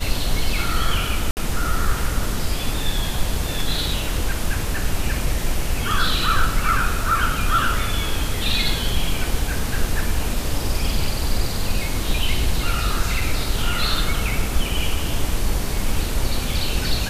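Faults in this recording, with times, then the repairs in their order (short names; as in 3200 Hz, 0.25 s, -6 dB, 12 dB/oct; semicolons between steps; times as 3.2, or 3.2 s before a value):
1.31–1.37 gap 59 ms
13.21 gap 3.2 ms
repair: interpolate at 1.31, 59 ms; interpolate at 13.21, 3.2 ms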